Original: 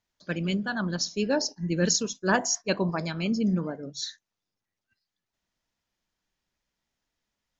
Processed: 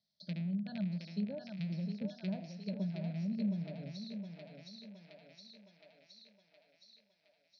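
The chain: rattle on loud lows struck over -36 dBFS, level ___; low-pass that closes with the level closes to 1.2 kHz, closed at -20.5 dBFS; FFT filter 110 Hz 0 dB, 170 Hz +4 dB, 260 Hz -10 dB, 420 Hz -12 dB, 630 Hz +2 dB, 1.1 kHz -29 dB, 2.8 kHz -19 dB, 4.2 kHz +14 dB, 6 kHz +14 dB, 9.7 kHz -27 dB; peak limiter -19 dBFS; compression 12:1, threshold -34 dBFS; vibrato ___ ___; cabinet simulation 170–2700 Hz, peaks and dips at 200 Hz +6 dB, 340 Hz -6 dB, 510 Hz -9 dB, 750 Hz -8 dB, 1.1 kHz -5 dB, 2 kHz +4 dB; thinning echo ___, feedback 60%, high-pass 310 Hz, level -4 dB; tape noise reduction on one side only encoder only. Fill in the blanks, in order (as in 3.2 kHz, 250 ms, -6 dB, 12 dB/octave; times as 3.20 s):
-14 dBFS, 13 Hz, 7.6 cents, 716 ms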